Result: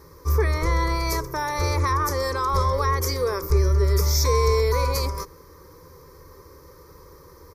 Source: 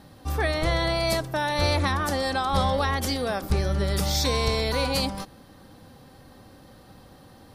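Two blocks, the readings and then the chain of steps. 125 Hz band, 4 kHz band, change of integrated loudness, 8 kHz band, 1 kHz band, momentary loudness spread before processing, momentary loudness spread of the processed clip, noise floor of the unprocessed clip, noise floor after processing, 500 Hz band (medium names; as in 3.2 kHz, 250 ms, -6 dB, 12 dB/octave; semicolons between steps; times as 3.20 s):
+5.0 dB, -3.5 dB, +2.5 dB, +3.5 dB, +2.5 dB, 4 LU, 6 LU, -51 dBFS, -49 dBFS, +2.5 dB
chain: rippled EQ curve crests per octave 0.79, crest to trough 12 dB; in parallel at +2 dB: peak limiter -18 dBFS, peak gain reduction 9.5 dB; on the sum: static phaser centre 760 Hz, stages 6; resampled via 32 kHz; trim -2 dB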